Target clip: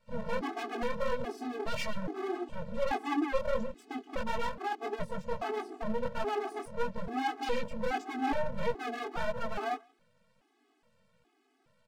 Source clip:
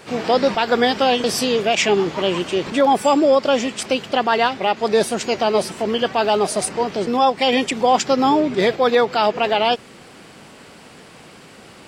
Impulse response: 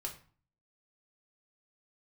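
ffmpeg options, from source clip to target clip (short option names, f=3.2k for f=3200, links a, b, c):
-filter_complex "[0:a]asplit=2[a][b];[b]adelay=160,highpass=300,lowpass=3.4k,asoftclip=type=hard:threshold=-13.5dB,volume=-17dB[c];[a][c]amix=inputs=2:normalize=0,afwtdn=0.0794,highshelf=f=2.3k:g=-8.5,acrossover=split=150|5800[d][e][f];[e]asoftclip=type=tanh:threshold=-18.5dB[g];[d][g][f]amix=inputs=3:normalize=0,flanger=delay=16.5:depth=6.9:speed=1.6,aeval=exprs='max(val(0),0)':c=same,afftfilt=real='re*gt(sin(2*PI*1.2*pts/sr)*(1-2*mod(floor(b*sr/1024/220),2)),0)':imag='im*gt(sin(2*PI*1.2*pts/sr)*(1-2*mod(floor(b*sr/1024/220),2)),0)':win_size=1024:overlap=0.75"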